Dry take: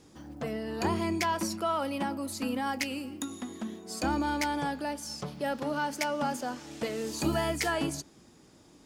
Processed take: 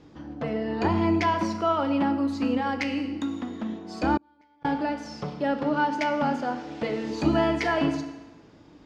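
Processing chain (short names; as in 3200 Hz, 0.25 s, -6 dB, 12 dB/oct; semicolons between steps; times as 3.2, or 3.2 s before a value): air absorption 210 m; FDN reverb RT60 1.2 s, low-frequency decay 0.7×, high-frequency decay 0.85×, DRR 6 dB; 4.15–4.65 flipped gate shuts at -21 dBFS, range -38 dB; gain +5 dB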